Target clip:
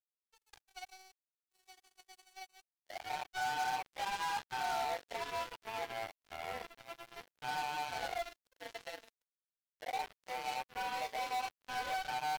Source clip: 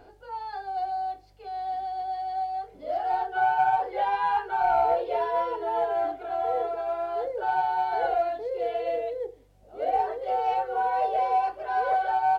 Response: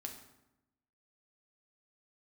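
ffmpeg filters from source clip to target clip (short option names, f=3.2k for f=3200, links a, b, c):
-af "aderivative,acrusher=bits=6:mix=0:aa=0.5,volume=5dB"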